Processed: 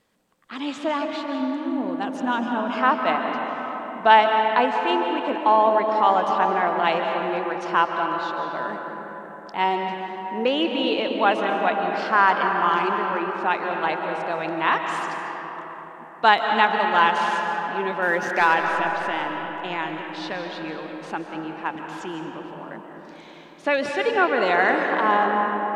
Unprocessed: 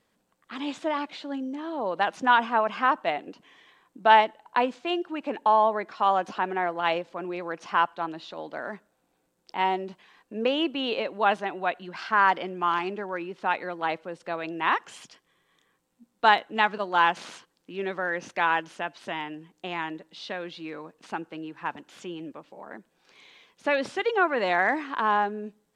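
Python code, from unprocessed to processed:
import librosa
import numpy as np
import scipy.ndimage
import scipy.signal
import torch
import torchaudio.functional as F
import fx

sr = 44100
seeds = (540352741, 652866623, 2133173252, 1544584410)

y = fx.graphic_eq_10(x, sr, hz=(125, 250, 500, 1000, 2000, 4000), db=(-5, 7, -7, -6, -10, -6), at=(1.4, 2.7))
y = fx.leveller(y, sr, passes=1, at=(18.02, 18.54))
y = fx.rev_freeverb(y, sr, rt60_s=4.8, hf_ratio=0.4, predelay_ms=105, drr_db=2.5)
y = y * librosa.db_to_amplitude(3.0)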